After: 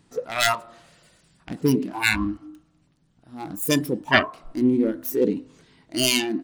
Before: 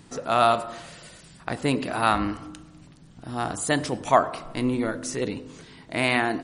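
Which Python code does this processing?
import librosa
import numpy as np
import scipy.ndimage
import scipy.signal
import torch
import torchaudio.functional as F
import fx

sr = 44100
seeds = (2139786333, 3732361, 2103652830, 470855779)

y = fx.self_delay(x, sr, depth_ms=0.48)
y = fx.noise_reduce_blind(y, sr, reduce_db=17)
y = fx.rider(y, sr, range_db=3, speed_s=0.5)
y = y * librosa.db_to_amplitude(5.5)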